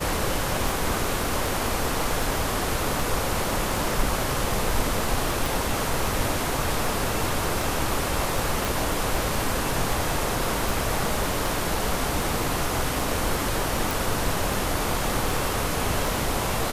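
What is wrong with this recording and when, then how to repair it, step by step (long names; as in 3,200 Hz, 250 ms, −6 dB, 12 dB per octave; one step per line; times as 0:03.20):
scratch tick 78 rpm
0:05.46: click
0:08.65: click
0:13.91: click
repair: click removal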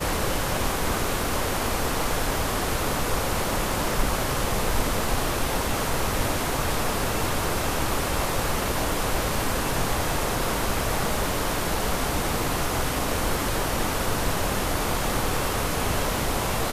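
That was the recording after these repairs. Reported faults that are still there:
0:05.46: click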